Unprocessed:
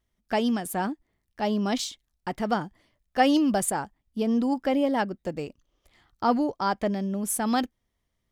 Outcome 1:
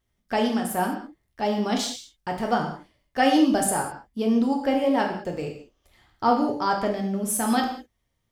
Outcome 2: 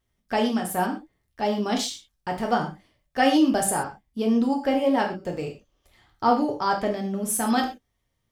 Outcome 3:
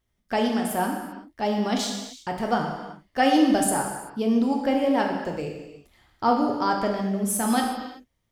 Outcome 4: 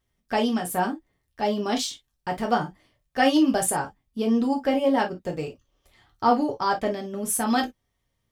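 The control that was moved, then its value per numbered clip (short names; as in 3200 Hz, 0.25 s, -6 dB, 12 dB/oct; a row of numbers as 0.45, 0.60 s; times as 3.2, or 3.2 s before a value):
non-linear reverb, gate: 230, 150, 410, 80 ms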